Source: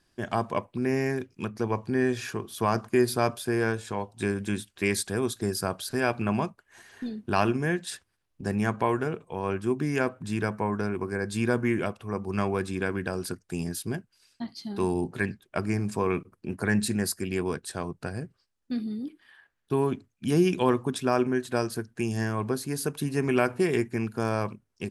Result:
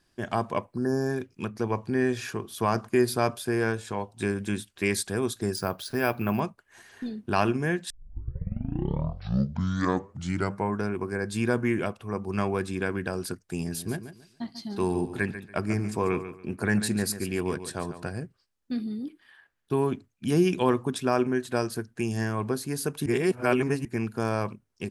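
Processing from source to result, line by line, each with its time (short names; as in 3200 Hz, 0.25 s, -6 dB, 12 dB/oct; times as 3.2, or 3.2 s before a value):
0.75–1.17 spectral repair 1800–4000 Hz
5.56–6.4 careless resampling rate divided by 3×, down filtered, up hold
7.9 tape start 2.82 s
13.58–18.11 feedback echo 0.142 s, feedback 25%, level -11.5 dB
23.06–23.85 reverse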